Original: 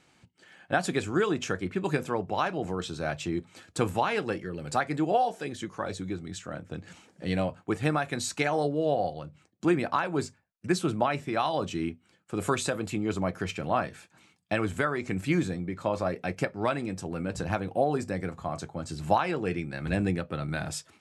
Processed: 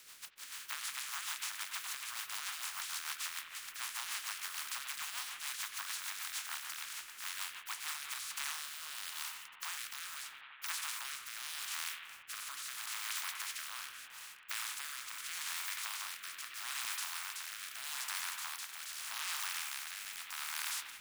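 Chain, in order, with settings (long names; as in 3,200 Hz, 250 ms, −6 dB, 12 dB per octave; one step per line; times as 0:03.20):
compressing power law on the bin magnitudes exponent 0.14
Butterworth high-pass 990 Hz 36 dB per octave
in parallel at −10.5 dB: soft clipping −13 dBFS, distortion −21 dB
on the sum: downward compressor 12 to 1, threshold −39 dBFS, peak gain reduction 22 dB
bit reduction 11 bits
on a send: bucket-brigade delay 90 ms, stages 2,048, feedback 78%, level −11 dB
on the sum: de-essing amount 90%
rotating-speaker cabinet horn 6.7 Hz, later 0.8 Hz, at 0:07.67
level +9 dB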